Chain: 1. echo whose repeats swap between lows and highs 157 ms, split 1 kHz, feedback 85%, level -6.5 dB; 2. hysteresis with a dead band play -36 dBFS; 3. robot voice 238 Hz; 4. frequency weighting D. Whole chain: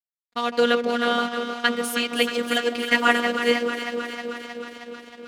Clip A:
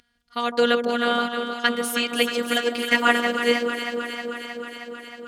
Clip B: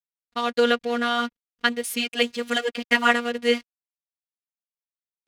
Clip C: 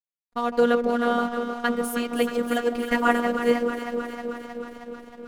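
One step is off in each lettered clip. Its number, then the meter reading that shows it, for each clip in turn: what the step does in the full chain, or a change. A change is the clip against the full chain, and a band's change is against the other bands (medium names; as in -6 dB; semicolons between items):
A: 2, distortion -20 dB; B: 1, momentary loudness spread change -8 LU; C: 4, 4 kHz band -10.5 dB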